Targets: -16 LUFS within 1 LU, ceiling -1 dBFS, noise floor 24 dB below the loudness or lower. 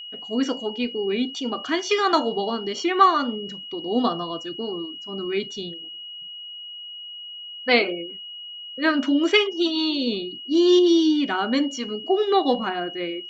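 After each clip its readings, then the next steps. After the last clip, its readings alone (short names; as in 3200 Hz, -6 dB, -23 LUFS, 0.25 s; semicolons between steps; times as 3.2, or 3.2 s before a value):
steady tone 2900 Hz; tone level -35 dBFS; loudness -22.5 LUFS; peak -4.0 dBFS; loudness target -16.0 LUFS
-> notch 2900 Hz, Q 30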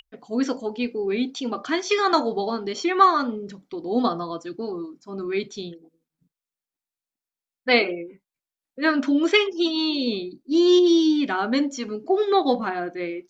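steady tone none; loudness -22.5 LUFS; peak -4.0 dBFS; loudness target -16.0 LUFS
-> gain +6.5 dB; limiter -1 dBFS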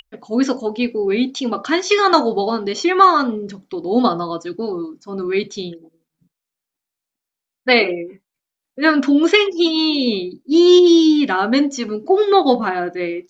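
loudness -16.5 LUFS; peak -1.0 dBFS; noise floor -85 dBFS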